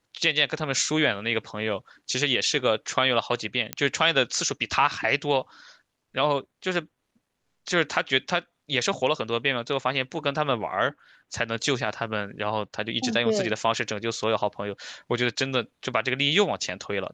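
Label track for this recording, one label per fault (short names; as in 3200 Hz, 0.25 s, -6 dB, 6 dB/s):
3.730000	3.730000	pop -10 dBFS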